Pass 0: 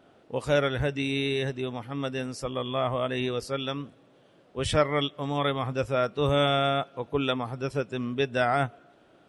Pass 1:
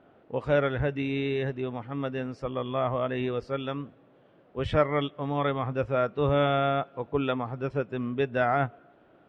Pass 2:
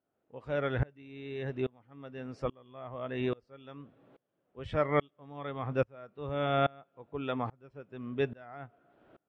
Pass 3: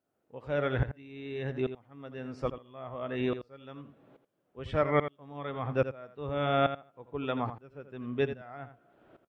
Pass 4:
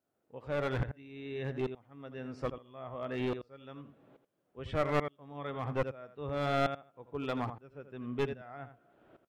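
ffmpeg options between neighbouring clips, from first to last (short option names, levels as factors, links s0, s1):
-af "lowpass=2200"
-af "aeval=exprs='val(0)*pow(10,-30*if(lt(mod(-1.2*n/s,1),2*abs(-1.2)/1000),1-mod(-1.2*n/s,1)/(2*abs(-1.2)/1000),(mod(-1.2*n/s,1)-2*abs(-1.2)/1000)/(1-2*abs(-1.2)/1000))/20)':c=same,volume=1.12"
-af "aecho=1:1:83:0.282,volume=1.19"
-af "aeval=exprs='clip(val(0),-1,0.0355)':c=same,volume=0.794"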